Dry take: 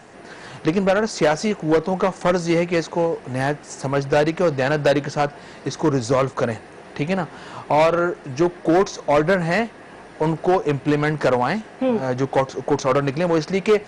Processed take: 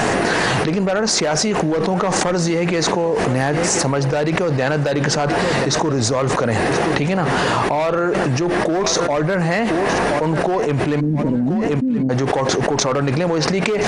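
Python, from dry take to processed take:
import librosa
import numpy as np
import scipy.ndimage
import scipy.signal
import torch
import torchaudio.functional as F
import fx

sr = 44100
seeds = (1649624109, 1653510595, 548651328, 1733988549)

y = fx.ladder_lowpass(x, sr, hz=300.0, resonance_pct=55, at=(10.99, 12.09), fade=0.02)
y = fx.echo_feedback(y, sr, ms=1025, feedback_pct=22, wet_db=-22)
y = fx.env_flatten(y, sr, amount_pct=100)
y = y * 10.0 ** (-5.5 / 20.0)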